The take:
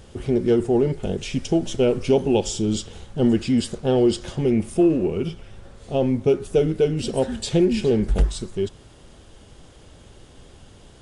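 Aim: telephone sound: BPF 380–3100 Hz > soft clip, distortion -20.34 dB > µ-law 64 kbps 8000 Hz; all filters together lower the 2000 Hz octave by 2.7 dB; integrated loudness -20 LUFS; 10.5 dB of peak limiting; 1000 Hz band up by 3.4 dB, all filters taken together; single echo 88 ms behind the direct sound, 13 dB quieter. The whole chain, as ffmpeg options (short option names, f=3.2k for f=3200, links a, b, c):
-af "equalizer=f=1k:t=o:g=6,equalizer=f=2k:t=o:g=-4,alimiter=limit=-17.5dB:level=0:latency=1,highpass=380,lowpass=3.1k,aecho=1:1:88:0.224,asoftclip=threshold=-21dB,volume=12.5dB" -ar 8000 -c:a pcm_mulaw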